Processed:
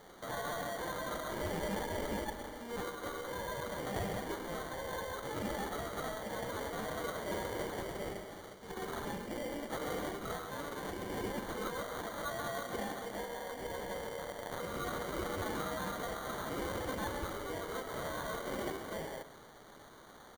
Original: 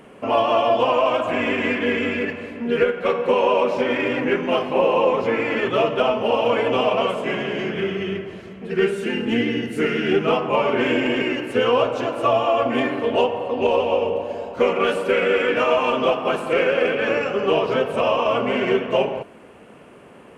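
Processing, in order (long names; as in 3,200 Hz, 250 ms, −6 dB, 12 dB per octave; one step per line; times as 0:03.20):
0:13.95–0:14.59: converter with a step at zero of −37.5 dBFS
notch filter 2,700 Hz, Q 8.7
in parallel at 0 dB: downward compressor, threshold −29 dBFS, peak gain reduction 15.5 dB
on the sum: brickwall limiter −14.5 dBFS, peak gain reduction 10.5 dB
first difference
decimation without filtering 17×
dynamic equaliser 5,100 Hz, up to −4 dB, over −57 dBFS, Q 0.85
0:10.40–0:11.10: tube saturation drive 32 dB, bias 0.55
on a send: single-tap delay 131 ms −14 dB
on the sum: level +2 dB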